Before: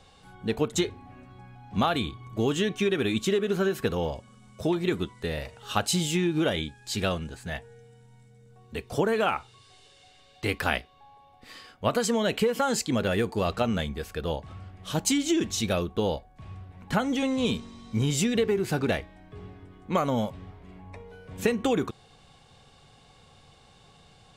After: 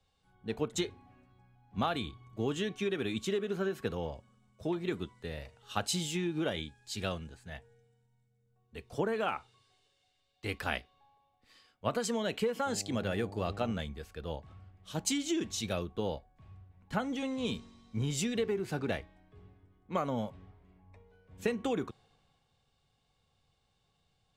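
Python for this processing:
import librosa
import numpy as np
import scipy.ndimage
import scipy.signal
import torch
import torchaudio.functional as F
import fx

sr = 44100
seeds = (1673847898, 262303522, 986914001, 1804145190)

y = fx.dmg_buzz(x, sr, base_hz=100.0, harmonics=8, level_db=-38.0, tilt_db=-4, odd_only=False, at=(12.65, 13.71), fade=0.02)
y = fx.high_shelf(y, sr, hz=11000.0, db=-6.0)
y = fx.band_widen(y, sr, depth_pct=40)
y = y * librosa.db_to_amplitude(-8.0)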